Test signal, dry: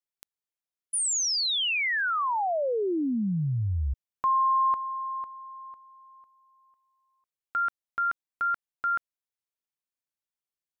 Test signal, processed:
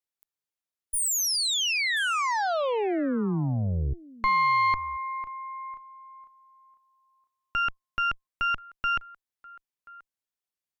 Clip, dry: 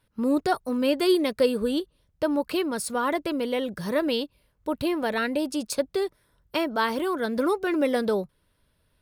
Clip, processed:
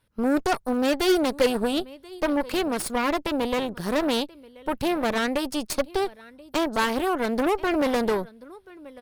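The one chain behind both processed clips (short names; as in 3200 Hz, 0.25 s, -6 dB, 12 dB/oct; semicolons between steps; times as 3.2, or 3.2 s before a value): echo 1.032 s -20.5 dB; added harmonics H 3 -42 dB, 8 -16 dB, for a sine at -10.5 dBFS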